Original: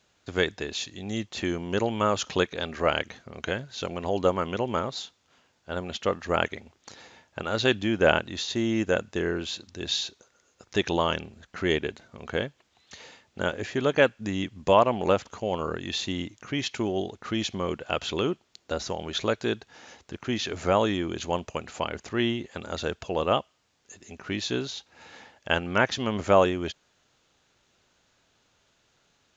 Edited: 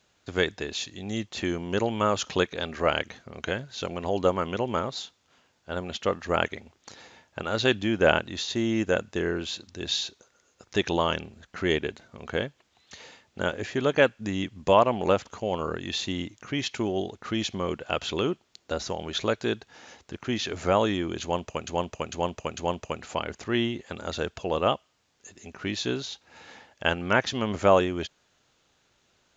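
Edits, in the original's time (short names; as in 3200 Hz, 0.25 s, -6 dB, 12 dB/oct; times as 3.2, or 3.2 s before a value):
21.22–21.67 loop, 4 plays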